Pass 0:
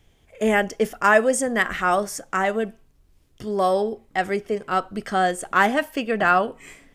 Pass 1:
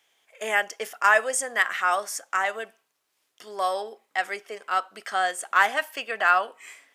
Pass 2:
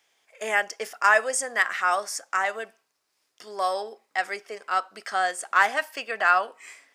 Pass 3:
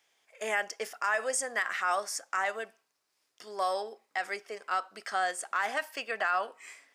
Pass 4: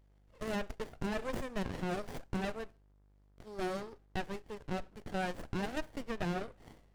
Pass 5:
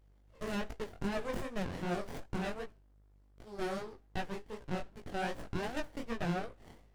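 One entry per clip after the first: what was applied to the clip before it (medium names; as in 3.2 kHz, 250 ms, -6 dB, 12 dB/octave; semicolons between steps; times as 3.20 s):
high-pass 870 Hz 12 dB/octave
graphic EQ with 31 bands 3.15 kHz -4 dB, 5 kHz +5 dB, 12.5 kHz -6 dB
peak limiter -15.5 dBFS, peak gain reduction 10 dB; trim -3.5 dB
mains buzz 50 Hz, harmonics 39, -62 dBFS -8 dB/octave; sliding maximum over 33 samples; trim -3.5 dB
chorus 2.6 Hz, delay 17 ms, depth 6.9 ms; trim +3 dB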